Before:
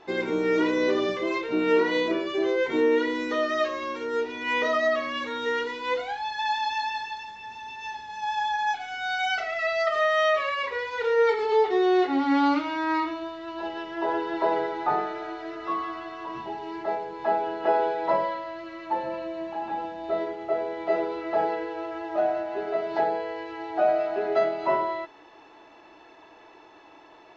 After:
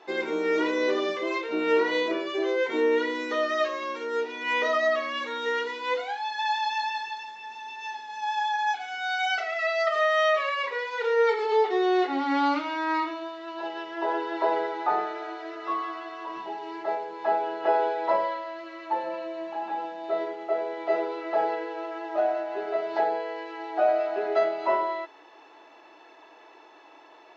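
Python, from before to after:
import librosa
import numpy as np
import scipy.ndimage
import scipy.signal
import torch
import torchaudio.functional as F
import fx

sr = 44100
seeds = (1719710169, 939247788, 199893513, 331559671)

y = scipy.signal.sosfilt(scipy.signal.butter(2, 340.0, 'highpass', fs=sr, output='sos'), x)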